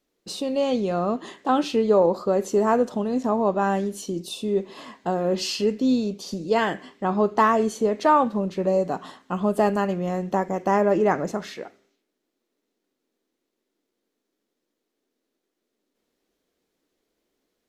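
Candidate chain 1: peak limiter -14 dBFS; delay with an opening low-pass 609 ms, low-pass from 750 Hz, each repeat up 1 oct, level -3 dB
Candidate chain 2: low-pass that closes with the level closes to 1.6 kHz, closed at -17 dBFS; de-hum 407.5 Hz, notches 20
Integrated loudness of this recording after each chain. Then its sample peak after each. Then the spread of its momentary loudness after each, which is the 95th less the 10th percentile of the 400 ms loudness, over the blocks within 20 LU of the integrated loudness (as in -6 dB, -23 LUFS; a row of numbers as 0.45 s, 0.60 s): -23.5 LUFS, -24.0 LUFS; -8.0 dBFS, -7.0 dBFS; 15 LU, 11 LU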